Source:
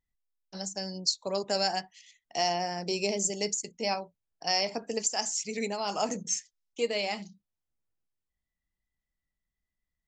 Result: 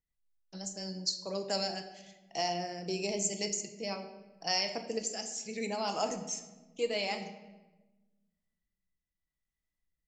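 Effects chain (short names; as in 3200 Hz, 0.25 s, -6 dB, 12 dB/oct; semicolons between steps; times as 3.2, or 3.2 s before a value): rotary speaker horn 5.5 Hz, later 0.8 Hz, at 1; reverb RT60 1.2 s, pre-delay 6 ms, DRR 6.5 dB; gain -2.5 dB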